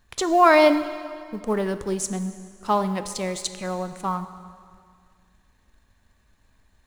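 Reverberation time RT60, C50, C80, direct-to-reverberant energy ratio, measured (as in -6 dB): 2.0 s, 11.5 dB, 12.5 dB, 10.5 dB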